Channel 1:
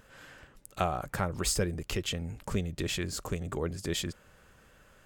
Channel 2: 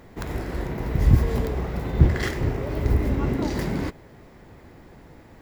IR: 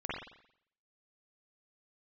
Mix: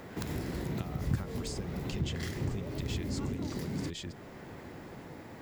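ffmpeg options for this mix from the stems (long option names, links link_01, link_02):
-filter_complex "[0:a]acompressor=threshold=-34dB:ratio=6,lowpass=6200,volume=-1dB,asplit=2[link_01][link_02];[1:a]highpass=110,acompressor=threshold=-34dB:ratio=2,volume=2.5dB[link_03];[link_02]apad=whole_len=239017[link_04];[link_03][link_04]sidechaincompress=threshold=-39dB:ratio=8:attack=41:release=681[link_05];[link_01][link_05]amix=inputs=2:normalize=0,acrossover=split=280|3000[link_06][link_07][link_08];[link_07]acompressor=threshold=-44dB:ratio=4[link_09];[link_06][link_09][link_08]amix=inputs=3:normalize=0"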